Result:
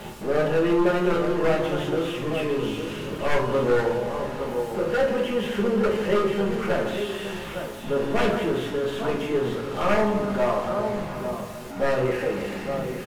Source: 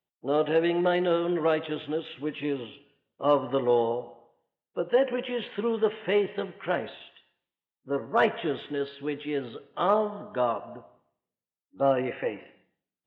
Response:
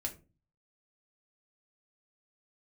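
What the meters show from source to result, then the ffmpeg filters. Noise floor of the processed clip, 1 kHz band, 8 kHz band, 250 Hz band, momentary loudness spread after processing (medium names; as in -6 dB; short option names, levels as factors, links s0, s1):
-35 dBFS, +2.5 dB, no reading, +5.5 dB, 8 LU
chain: -filter_complex "[0:a]aeval=exprs='val(0)+0.5*0.0398*sgn(val(0))':c=same,highshelf=f=2700:g=-11.5,aecho=1:1:46|151|859:0.316|0.266|0.376,aeval=exprs='0.126*(abs(mod(val(0)/0.126+3,4)-2)-1)':c=same[s0];[1:a]atrim=start_sample=2205,asetrate=27342,aresample=44100[s1];[s0][s1]afir=irnorm=-1:irlink=0,volume=0.841"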